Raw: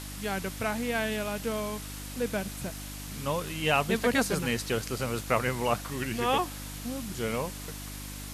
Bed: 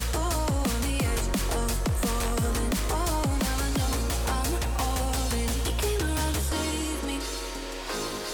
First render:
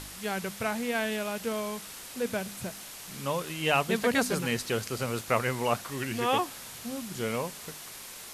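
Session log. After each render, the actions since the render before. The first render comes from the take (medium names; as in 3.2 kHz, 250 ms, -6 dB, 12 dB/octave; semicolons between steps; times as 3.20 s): de-hum 50 Hz, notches 6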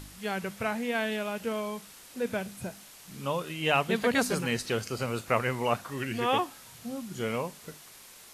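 noise print and reduce 7 dB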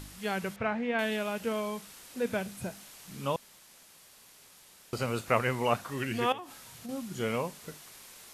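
0.56–0.99 s: low-pass 2.6 kHz; 3.36–4.93 s: room tone; 6.32–6.89 s: compression 8:1, threshold -38 dBFS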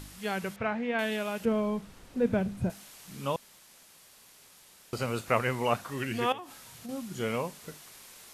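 1.45–2.70 s: tilt EQ -3.5 dB/octave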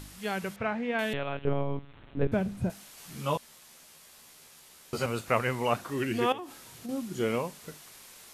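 1.13–2.32 s: monotone LPC vocoder at 8 kHz 140 Hz; 2.96–5.06 s: doubling 13 ms -2 dB; 5.76–7.39 s: peaking EQ 340 Hz +7.5 dB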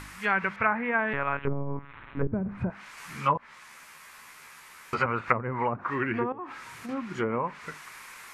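low-pass that closes with the level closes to 400 Hz, closed at -23 dBFS; high-order bell 1.5 kHz +13 dB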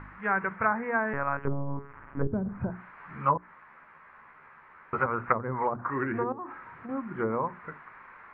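low-pass 1.7 kHz 24 dB/octave; hum notches 60/120/180/240/300/360/420 Hz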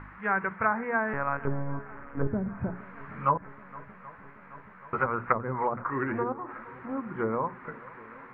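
shuffle delay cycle 779 ms, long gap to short 1.5:1, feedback 67%, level -21 dB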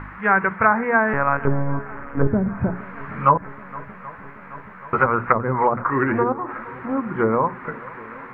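trim +10 dB; peak limiter -3 dBFS, peak gain reduction 2.5 dB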